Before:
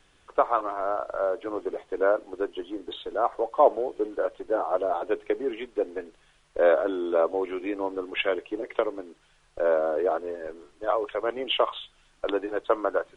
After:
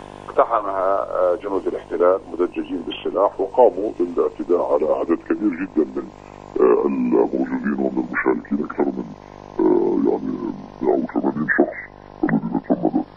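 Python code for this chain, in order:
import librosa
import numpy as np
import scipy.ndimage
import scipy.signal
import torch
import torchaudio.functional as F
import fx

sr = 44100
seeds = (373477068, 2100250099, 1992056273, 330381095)

y = fx.pitch_glide(x, sr, semitones=-11.0, runs='starting unshifted')
y = fx.dmg_buzz(y, sr, base_hz=50.0, harmonics=21, level_db=-54.0, tilt_db=-1, odd_only=False)
y = fx.band_squash(y, sr, depth_pct=40)
y = y * 10.0 ** (8.5 / 20.0)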